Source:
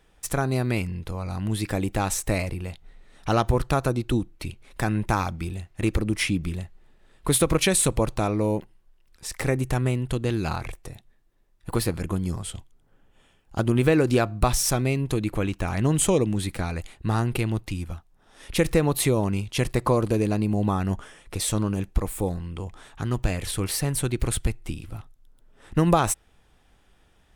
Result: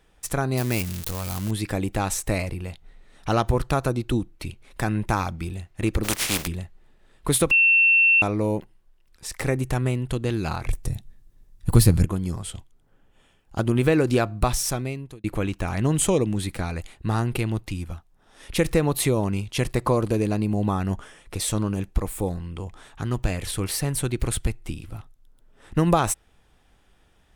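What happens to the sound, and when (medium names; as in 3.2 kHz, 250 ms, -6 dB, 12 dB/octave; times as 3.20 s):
0.57–1.51 s: zero-crossing glitches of -19 dBFS
6.03–6.46 s: spectral contrast reduction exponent 0.3
7.51–8.22 s: bleep 2.7 kHz -13.5 dBFS
10.68–12.05 s: tone controls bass +14 dB, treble +8 dB
14.20–15.24 s: fade out equal-power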